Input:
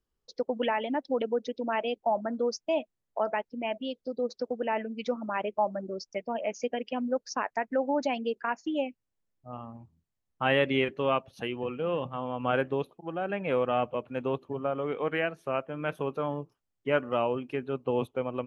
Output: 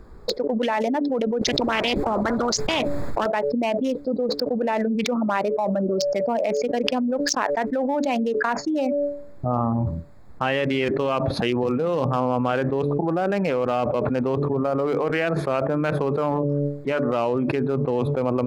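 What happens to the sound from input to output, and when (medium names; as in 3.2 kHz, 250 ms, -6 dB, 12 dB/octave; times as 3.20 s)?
1.41–3.26 s: spectrum-flattening compressor 4:1
whole clip: local Wiener filter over 15 samples; de-hum 143.9 Hz, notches 4; level flattener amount 100%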